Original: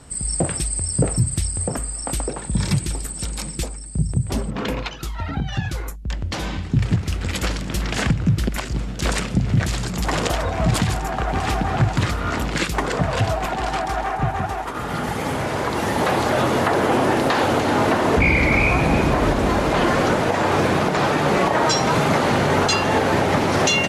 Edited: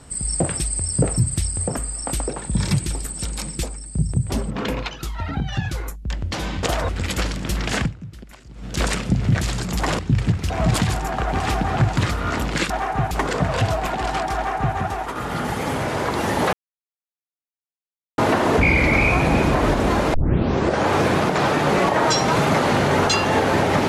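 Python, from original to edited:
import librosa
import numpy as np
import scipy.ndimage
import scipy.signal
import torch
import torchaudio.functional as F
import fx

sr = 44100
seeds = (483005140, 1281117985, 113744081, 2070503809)

y = fx.edit(x, sr, fx.swap(start_s=6.63, length_s=0.51, other_s=10.24, other_length_s=0.26),
    fx.fade_down_up(start_s=8.03, length_s=0.95, db=-18.0, fade_s=0.18),
    fx.duplicate(start_s=13.94, length_s=0.41, to_s=12.7),
    fx.silence(start_s=16.12, length_s=1.65),
    fx.tape_start(start_s=19.73, length_s=0.75), tone=tone)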